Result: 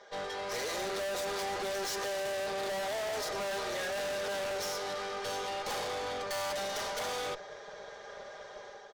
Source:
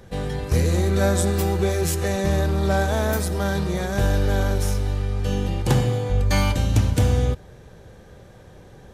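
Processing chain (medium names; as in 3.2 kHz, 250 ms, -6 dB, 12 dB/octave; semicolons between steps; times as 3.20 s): Chebyshev band-pass 520–5800 Hz, order 3; band-stop 2.6 kHz, Q 5.8; comb 4.9 ms, depth 83%; level rider gain up to 7 dB; valve stage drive 34 dB, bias 0.55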